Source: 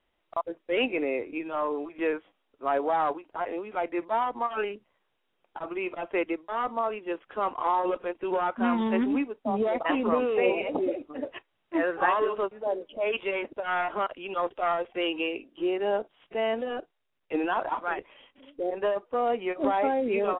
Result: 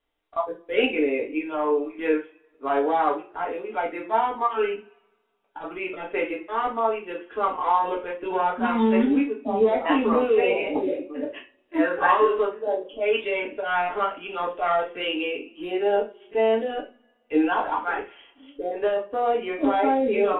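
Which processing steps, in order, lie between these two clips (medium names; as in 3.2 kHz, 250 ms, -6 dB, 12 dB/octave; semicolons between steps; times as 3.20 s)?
two-slope reverb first 0.3 s, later 1.8 s, from -27 dB, DRR -2 dB; spectral noise reduction 7 dB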